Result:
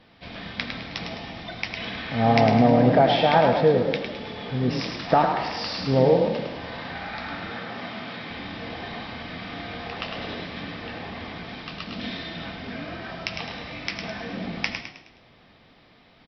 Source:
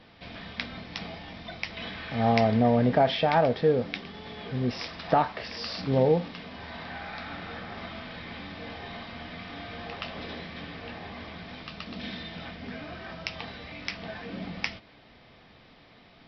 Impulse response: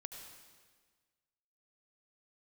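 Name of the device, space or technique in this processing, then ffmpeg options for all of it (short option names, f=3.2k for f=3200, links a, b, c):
keyed gated reverb: -filter_complex "[0:a]asplit=3[a][b][c];[1:a]atrim=start_sample=2205[d];[b][d]afir=irnorm=-1:irlink=0[e];[c]apad=whole_len=717546[f];[e][f]sidechaingate=range=-33dB:threshold=-44dB:ratio=16:detection=peak,volume=3.5dB[g];[a][g]amix=inputs=2:normalize=0,asettb=1/sr,asplit=3[h][i][j];[h]atrim=end=7.524[k];[i]atrim=start=7.52:end=8.31,asetpts=PTS-STARTPTS,afade=t=in:d=0.004:c=qsin,afade=t=out:st=0.786:d=0.004:c=qsin,highpass=f=110:w=0.5412,highpass=f=110:w=1.3066[l];[j]atrim=start=8.306[m];[k][l]acrossfade=d=0.004:c1=hsin:c2=qsin[n];[n][m]acrossfade=d=0.004:c1=qsin:c2=hsin,asplit=6[o][p][q][r][s][t];[p]adelay=105,afreqshift=33,volume=-6.5dB[u];[q]adelay=210,afreqshift=66,volume=-14.2dB[v];[r]adelay=315,afreqshift=99,volume=-22dB[w];[s]adelay=420,afreqshift=132,volume=-29.7dB[x];[t]adelay=525,afreqshift=165,volume=-37.5dB[y];[o][u][v][w][x][y]amix=inputs=6:normalize=0,volume=-1.5dB"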